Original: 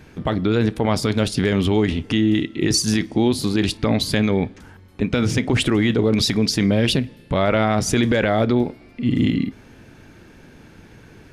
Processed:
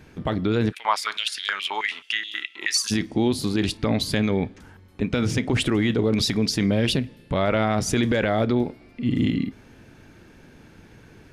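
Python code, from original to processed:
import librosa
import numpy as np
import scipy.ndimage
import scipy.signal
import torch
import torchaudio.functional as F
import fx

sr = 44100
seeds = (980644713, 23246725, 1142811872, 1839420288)

y = fx.filter_held_highpass(x, sr, hz=9.4, low_hz=990.0, high_hz=3500.0, at=(0.71, 2.9), fade=0.02)
y = y * 10.0 ** (-3.5 / 20.0)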